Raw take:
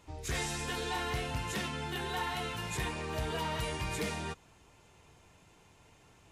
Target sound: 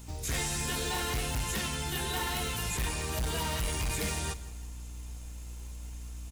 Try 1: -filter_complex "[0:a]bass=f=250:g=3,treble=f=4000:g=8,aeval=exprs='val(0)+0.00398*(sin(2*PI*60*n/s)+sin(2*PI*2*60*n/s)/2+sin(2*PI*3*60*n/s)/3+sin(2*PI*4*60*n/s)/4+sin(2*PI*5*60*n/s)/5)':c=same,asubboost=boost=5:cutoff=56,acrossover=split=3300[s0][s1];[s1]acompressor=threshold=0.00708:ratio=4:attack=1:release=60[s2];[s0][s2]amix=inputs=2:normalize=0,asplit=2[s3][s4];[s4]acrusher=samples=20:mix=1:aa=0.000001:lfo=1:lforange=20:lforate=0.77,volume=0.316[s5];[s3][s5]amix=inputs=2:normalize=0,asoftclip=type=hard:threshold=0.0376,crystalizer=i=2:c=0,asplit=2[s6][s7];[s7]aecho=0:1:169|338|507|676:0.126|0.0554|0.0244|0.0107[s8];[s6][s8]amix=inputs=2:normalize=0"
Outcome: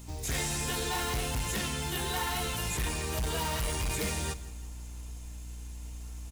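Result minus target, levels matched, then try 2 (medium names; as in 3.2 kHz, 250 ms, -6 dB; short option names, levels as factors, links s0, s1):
decimation with a swept rate: distortion -5 dB
-filter_complex "[0:a]bass=f=250:g=3,treble=f=4000:g=8,aeval=exprs='val(0)+0.00398*(sin(2*PI*60*n/s)+sin(2*PI*2*60*n/s)/2+sin(2*PI*3*60*n/s)/3+sin(2*PI*4*60*n/s)/4+sin(2*PI*5*60*n/s)/5)':c=same,asubboost=boost=5:cutoff=56,acrossover=split=3300[s0][s1];[s1]acompressor=threshold=0.00708:ratio=4:attack=1:release=60[s2];[s0][s2]amix=inputs=2:normalize=0,asplit=2[s3][s4];[s4]acrusher=samples=69:mix=1:aa=0.000001:lfo=1:lforange=69:lforate=0.77,volume=0.316[s5];[s3][s5]amix=inputs=2:normalize=0,asoftclip=type=hard:threshold=0.0376,crystalizer=i=2:c=0,asplit=2[s6][s7];[s7]aecho=0:1:169|338|507|676:0.126|0.0554|0.0244|0.0107[s8];[s6][s8]amix=inputs=2:normalize=0"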